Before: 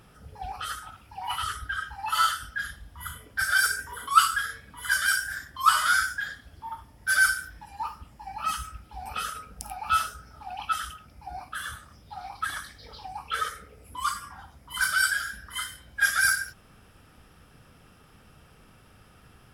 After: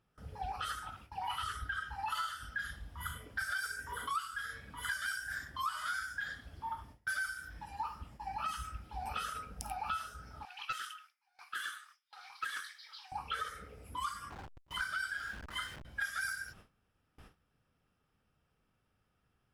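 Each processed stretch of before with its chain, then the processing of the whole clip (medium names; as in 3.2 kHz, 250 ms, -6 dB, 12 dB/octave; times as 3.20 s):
10.45–13.12 s: high-pass 1.3 kHz 24 dB/octave + loudspeaker Doppler distortion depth 0.13 ms
14.30–15.85 s: send-on-delta sampling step -40.5 dBFS + treble shelf 5.9 kHz -10 dB
whole clip: gate with hold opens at -42 dBFS; treble shelf 7.1 kHz -6.5 dB; compression 10:1, threshold -33 dBFS; trim -1.5 dB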